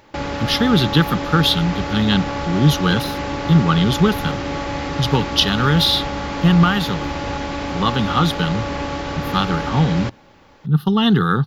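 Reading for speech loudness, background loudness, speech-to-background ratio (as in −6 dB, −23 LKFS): −18.0 LKFS, −25.0 LKFS, 7.0 dB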